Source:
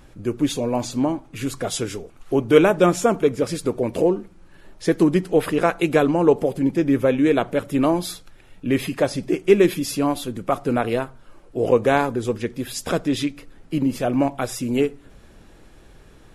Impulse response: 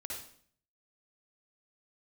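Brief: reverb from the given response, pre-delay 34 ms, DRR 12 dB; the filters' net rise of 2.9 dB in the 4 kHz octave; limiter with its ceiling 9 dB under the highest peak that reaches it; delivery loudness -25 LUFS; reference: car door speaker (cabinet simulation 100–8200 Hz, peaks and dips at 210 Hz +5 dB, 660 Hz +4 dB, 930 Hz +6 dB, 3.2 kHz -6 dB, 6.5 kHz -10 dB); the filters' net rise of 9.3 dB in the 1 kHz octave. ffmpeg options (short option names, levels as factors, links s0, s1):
-filter_complex "[0:a]equalizer=f=1000:t=o:g=7,equalizer=f=4000:t=o:g=7.5,alimiter=limit=0.376:level=0:latency=1,asplit=2[s0][s1];[1:a]atrim=start_sample=2205,adelay=34[s2];[s1][s2]afir=irnorm=-1:irlink=0,volume=0.266[s3];[s0][s3]amix=inputs=2:normalize=0,highpass=100,equalizer=f=210:t=q:w=4:g=5,equalizer=f=660:t=q:w=4:g=4,equalizer=f=930:t=q:w=4:g=6,equalizer=f=3200:t=q:w=4:g=-6,equalizer=f=6500:t=q:w=4:g=-10,lowpass=f=8200:w=0.5412,lowpass=f=8200:w=1.3066,volume=0.562"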